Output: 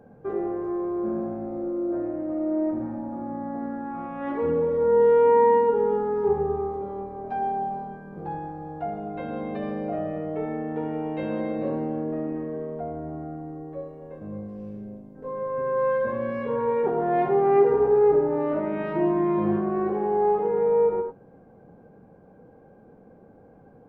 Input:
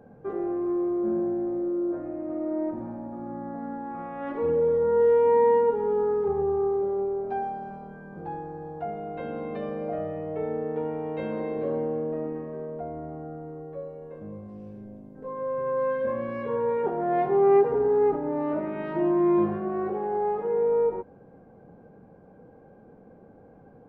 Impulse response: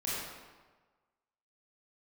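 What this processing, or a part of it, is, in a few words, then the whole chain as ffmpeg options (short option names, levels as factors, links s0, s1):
keyed gated reverb: -filter_complex "[0:a]asplit=3[s0][s1][s2];[1:a]atrim=start_sample=2205[s3];[s1][s3]afir=irnorm=-1:irlink=0[s4];[s2]apad=whole_len=1053286[s5];[s4][s5]sidechaingate=range=0.0224:threshold=0.00794:ratio=16:detection=peak,volume=0.355[s6];[s0][s6]amix=inputs=2:normalize=0"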